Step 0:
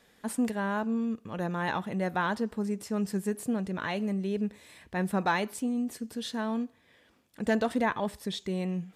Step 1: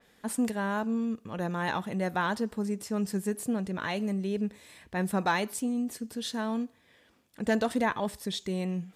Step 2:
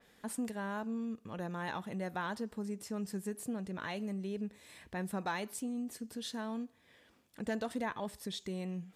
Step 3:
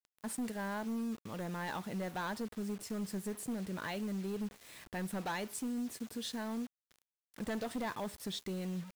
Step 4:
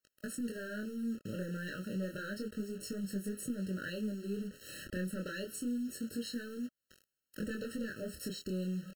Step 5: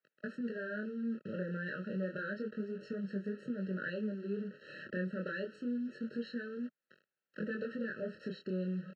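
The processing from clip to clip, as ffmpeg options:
-af "adynamicequalizer=threshold=0.00501:dfrequency=4000:dqfactor=0.7:tfrequency=4000:tqfactor=0.7:attack=5:release=100:ratio=0.375:range=2.5:mode=boostabove:tftype=highshelf"
-af "acompressor=threshold=0.00631:ratio=1.5,volume=0.794"
-af "asoftclip=type=hard:threshold=0.0178,acrusher=bits=8:mix=0:aa=0.000001,volume=1.12"
-af "acompressor=threshold=0.00501:ratio=5,flanger=delay=20:depth=7.5:speed=0.3,afftfilt=real='re*eq(mod(floor(b*sr/1024/640),2),0)':imag='im*eq(mod(floor(b*sr/1024/640),2),0)':win_size=1024:overlap=0.75,volume=4.22"
-af "highpass=f=160:w=0.5412,highpass=f=160:w=1.3066,equalizer=f=200:t=q:w=4:g=-3,equalizer=f=290:t=q:w=4:g=-10,equalizer=f=1000:t=q:w=4:g=-9,equalizer=f=3000:t=q:w=4:g=-9,lowpass=f=3100:w=0.5412,lowpass=f=3100:w=1.3066,volume=1.58"

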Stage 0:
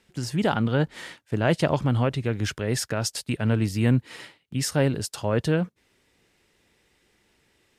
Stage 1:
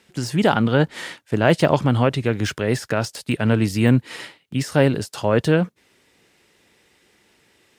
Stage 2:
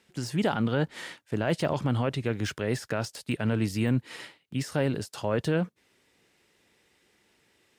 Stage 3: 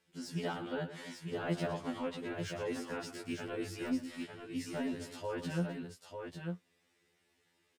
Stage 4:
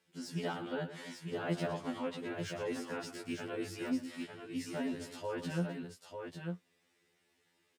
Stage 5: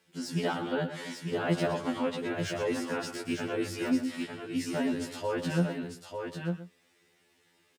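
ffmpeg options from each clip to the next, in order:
-af "highpass=f=140:p=1,deesser=0.75,volume=2.24"
-af "alimiter=limit=0.376:level=0:latency=1:release=11,volume=0.422"
-af "aecho=1:1:116|261|897:0.266|0.168|0.531,afftfilt=real='re*2*eq(mod(b,4),0)':imag='im*2*eq(mod(b,4),0)':win_size=2048:overlap=0.75,volume=0.422"
-af "highpass=93"
-af "aecho=1:1:124:0.211,volume=2.24"

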